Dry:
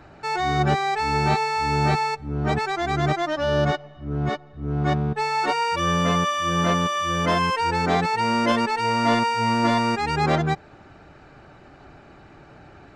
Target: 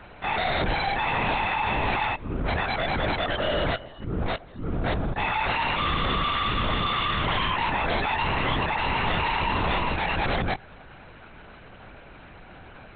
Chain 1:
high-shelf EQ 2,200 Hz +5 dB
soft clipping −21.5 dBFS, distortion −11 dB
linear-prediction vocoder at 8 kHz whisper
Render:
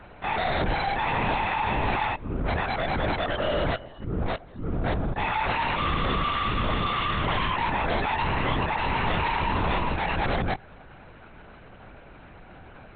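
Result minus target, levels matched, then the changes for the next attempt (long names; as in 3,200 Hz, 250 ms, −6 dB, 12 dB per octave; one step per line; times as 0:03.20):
4,000 Hz band −3.0 dB
change: high-shelf EQ 2,200 Hz +12 dB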